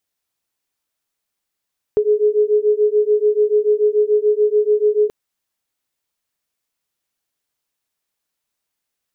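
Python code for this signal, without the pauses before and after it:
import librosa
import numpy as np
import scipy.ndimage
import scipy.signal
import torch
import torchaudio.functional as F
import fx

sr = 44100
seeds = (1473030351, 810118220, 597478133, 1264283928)

y = fx.two_tone_beats(sr, length_s=3.13, hz=418.0, beat_hz=6.9, level_db=-15.5)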